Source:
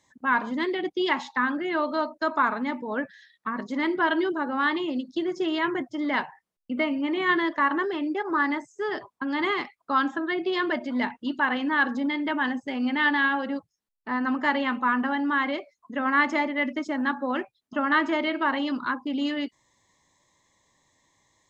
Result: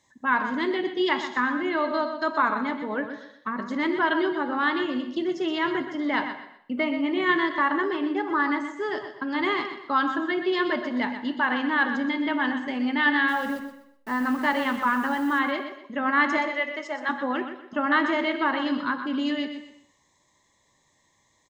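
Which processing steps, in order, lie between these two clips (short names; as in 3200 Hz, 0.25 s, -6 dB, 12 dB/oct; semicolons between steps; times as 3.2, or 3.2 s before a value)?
13.28–15.39 level-crossing sampler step -43 dBFS; 16.37–17.09 HPF 410 Hz 24 dB/oct; feedback echo 0.124 s, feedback 30%, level -9.5 dB; non-linear reverb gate 0.35 s falling, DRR 11.5 dB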